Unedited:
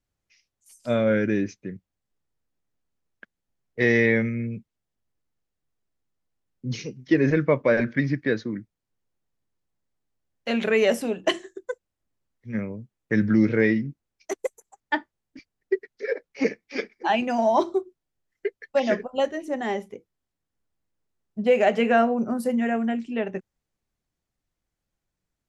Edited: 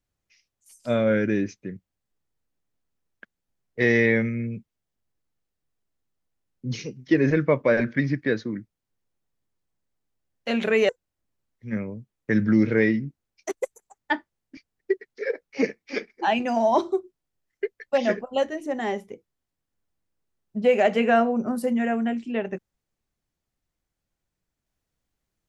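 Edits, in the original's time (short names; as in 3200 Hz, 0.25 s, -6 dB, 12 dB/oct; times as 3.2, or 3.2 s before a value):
10.89–11.71 cut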